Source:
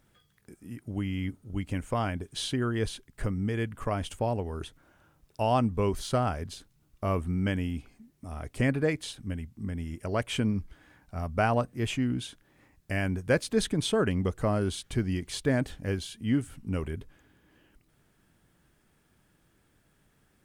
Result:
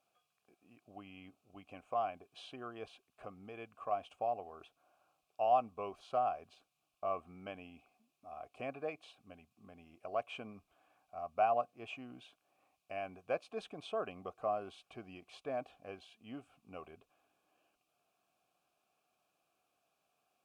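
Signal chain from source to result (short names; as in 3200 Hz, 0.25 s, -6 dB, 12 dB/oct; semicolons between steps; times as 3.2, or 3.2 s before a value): added noise violet -54 dBFS; vowel filter a; gain +1.5 dB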